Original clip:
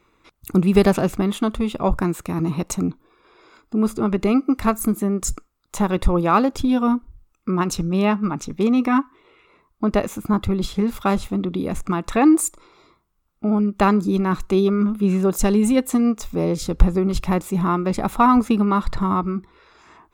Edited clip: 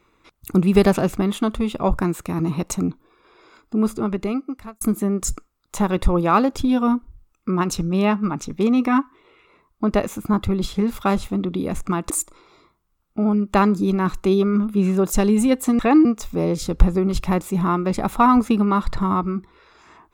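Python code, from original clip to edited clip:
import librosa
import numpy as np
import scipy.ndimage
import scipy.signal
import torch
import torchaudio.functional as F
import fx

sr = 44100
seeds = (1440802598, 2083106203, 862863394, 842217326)

y = fx.edit(x, sr, fx.fade_out_span(start_s=3.82, length_s=0.99),
    fx.move(start_s=12.1, length_s=0.26, to_s=16.05), tone=tone)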